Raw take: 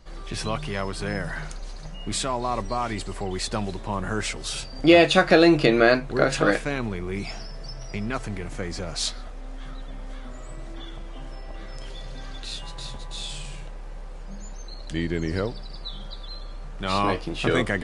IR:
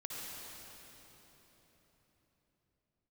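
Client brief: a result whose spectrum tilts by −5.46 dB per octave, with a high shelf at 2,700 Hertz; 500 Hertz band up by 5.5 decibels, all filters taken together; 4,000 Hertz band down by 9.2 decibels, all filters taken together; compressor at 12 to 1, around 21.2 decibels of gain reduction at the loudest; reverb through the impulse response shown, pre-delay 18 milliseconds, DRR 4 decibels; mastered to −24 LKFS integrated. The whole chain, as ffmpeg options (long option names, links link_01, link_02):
-filter_complex "[0:a]equalizer=frequency=500:width_type=o:gain=7,highshelf=frequency=2700:gain=-7.5,equalizer=frequency=4000:width_type=o:gain=-5.5,acompressor=threshold=-29dB:ratio=12,asplit=2[link_01][link_02];[1:a]atrim=start_sample=2205,adelay=18[link_03];[link_02][link_03]afir=irnorm=-1:irlink=0,volume=-4.5dB[link_04];[link_01][link_04]amix=inputs=2:normalize=0,volume=10.5dB"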